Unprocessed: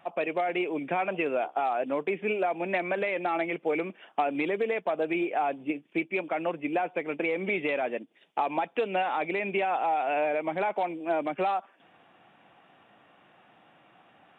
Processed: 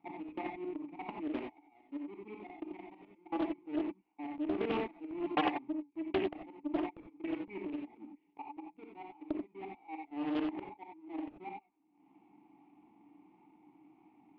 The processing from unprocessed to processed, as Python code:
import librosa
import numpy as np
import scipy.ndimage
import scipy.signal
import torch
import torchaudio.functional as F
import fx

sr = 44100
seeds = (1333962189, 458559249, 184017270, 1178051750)

y = fx.halfwave_hold(x, sr)
y = scipy.signal.sosfilt(scipy.signal.butter(4, 3400.0, 'lowpass', fs=sr, output='sos'), y)
y = fx.tilt_eq(y, sr, slope=-2.5)
y = fx.hum_notches(y, sr, base_hz=50, count=3)
y = fx.level_steps(y, sr, step_db=22)
y = fx.transient(y, sr, attack_db=7, sustain_db=-11)
y = fx.vowel_filter(y, sr, vowel='u')
y = fx.auto_swell(y, sr, attack_ms=590.0)
y = fx.rev_gated(y, sr, seeds[0], gate_ms=110, shape='rising', drr_db=0.5)
y = fx.doppler_dist(y, sr, depth_ms=0.41)
y = y * librosa.db_to_amplitude(10.5)